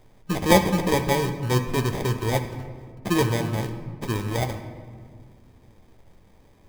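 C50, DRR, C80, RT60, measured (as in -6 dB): 9.0 dB, 4.5 dB, 10.5 dB, 1.9 s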